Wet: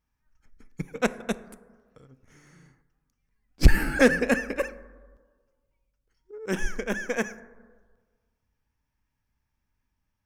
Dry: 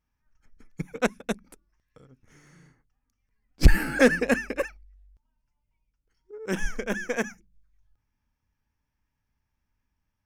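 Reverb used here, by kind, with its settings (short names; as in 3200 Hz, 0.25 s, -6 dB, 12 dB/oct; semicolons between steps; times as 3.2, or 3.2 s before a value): plate-style reverb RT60 1.5 s, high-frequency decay 0.3×, DRR 14.5 dB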